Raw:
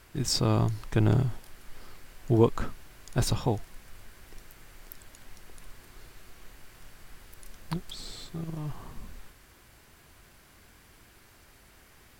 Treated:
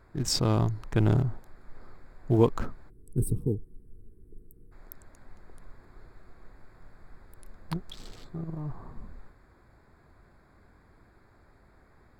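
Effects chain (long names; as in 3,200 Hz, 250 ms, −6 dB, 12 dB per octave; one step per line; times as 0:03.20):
adaptive Wiener filter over 15 samples
gain on a spectral selection 0:02.90–0:04.72, 480–7,900 Hz −29 dB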